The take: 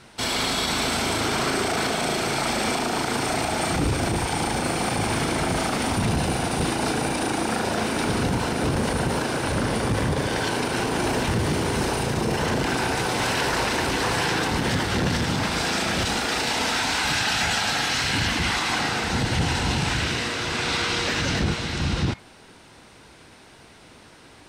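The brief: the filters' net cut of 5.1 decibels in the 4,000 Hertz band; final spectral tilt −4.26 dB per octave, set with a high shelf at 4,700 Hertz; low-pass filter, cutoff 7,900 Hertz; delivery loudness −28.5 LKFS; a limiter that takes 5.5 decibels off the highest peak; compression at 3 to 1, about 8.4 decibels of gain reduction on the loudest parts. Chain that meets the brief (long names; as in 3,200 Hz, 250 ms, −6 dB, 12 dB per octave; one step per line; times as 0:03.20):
low-pass filter 7,900 Hz
parametric band 4,000 Hz −8 dB
high-shelf EQ 4,700 Hz +3 dB
downward compressor 3 to 1, threshold −31 dBFS
level +5.5 dB
brickwall limiter −19.5 dBFS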